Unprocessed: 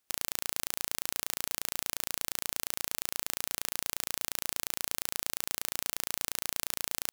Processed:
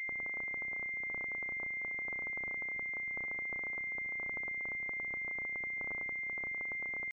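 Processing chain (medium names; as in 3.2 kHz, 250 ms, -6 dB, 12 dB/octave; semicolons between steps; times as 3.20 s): high-pass 150 Hz 12 dB/octave; pre-echo 35 ms -20 dB; pitch shift +1.5 st; class-D stage that switches slowly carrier 2.1 kHz; trim -9 dB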